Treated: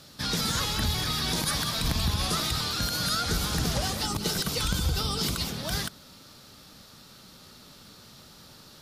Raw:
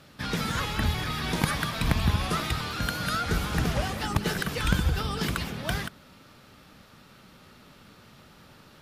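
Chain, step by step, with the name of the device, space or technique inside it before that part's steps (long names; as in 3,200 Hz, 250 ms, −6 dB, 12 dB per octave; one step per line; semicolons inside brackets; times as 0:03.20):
over-bright horn tweeter (high shelf with overshoot 3,300 Hz +8 dB, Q 1.5; brickwall limiter −17 dBFS, peak gain reduction 9.5 dB)
0:04.02–0:05.49: notch filter 1,700 Hz, Q 7.1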